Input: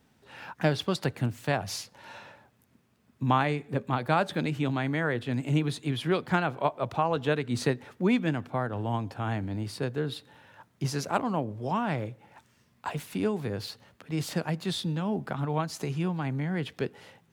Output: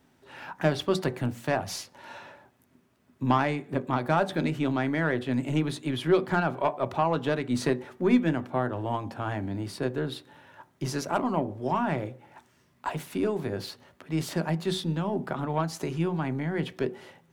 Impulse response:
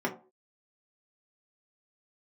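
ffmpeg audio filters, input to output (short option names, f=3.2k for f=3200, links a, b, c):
-filter_complex "[0:a]aeval=exprs='(tanh(7.08*val(0)+0.25)-tanh(0.25))/7.08':c=same,asplit=2[a][b];[1:a]atrim=start_sample=2205[c];[b][c]afir=irnorm=-1:irlink=0,volume=-14.5dB[d];[a][d]amix=inputs=2:normalize=0"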